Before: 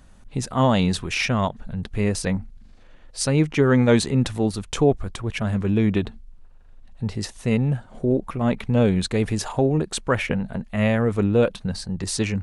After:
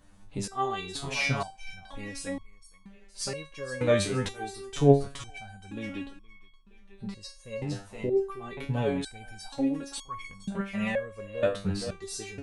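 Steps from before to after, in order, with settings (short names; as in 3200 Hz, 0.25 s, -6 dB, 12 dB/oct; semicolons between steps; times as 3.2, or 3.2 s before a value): thinning echo 0.468 s, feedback 21%, high-pass 450 Hz, level -9 dB; stepped resonator 2.1 Hz 99–1100 Hz; gain +5 dB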